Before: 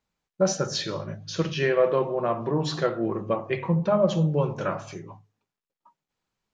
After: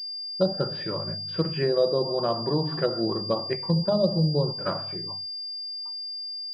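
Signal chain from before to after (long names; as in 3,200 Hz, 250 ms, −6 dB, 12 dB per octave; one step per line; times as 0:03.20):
0:03.53–0:04.75: noise gate −27 dBFS, range −8 dB
treble cut that deepens with the level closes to 670 Hz, closed at −18.5 dBFS
switching amplifier with a slow clock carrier 4,800 Hz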